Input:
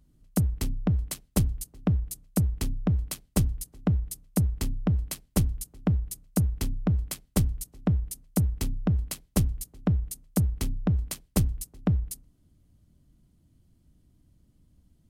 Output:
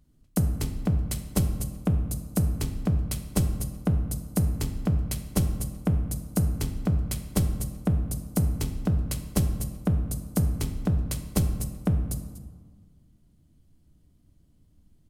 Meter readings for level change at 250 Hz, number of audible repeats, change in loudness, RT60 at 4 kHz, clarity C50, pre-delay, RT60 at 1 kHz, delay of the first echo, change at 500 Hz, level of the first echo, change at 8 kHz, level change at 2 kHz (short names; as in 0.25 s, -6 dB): +0.5 dB, 1, +1.0 dB, 0.80 s, 8.5 dB, 3 ms, 1.5 s, 0.242 s, +1.5 dB, -15.5 dB, +0.5 dB, +1.0 dB